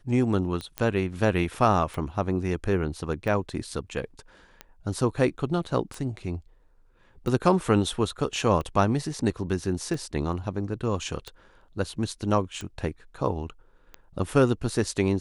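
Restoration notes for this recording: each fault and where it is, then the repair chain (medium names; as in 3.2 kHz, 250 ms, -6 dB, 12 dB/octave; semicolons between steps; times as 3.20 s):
tick 45 rpm -21 dBFS
0.78 s: pop -14 dBFS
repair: de-click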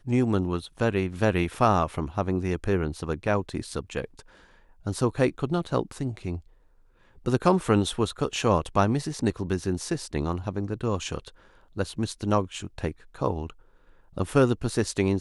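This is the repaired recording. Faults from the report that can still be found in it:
nothing left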